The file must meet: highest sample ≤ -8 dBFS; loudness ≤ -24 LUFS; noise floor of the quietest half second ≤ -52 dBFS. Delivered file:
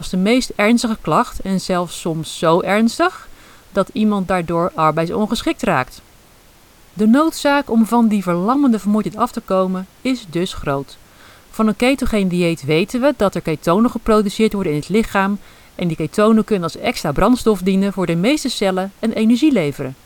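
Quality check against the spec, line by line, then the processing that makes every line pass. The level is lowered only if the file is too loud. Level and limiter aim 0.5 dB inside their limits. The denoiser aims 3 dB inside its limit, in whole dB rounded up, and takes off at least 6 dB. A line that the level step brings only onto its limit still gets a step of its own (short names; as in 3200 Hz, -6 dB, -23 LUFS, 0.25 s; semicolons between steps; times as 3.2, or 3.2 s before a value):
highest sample -2.0 dBFS: fail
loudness -17.0 LUFS: fail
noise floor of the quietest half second -47 dBFS: fail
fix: gain -7.5 dB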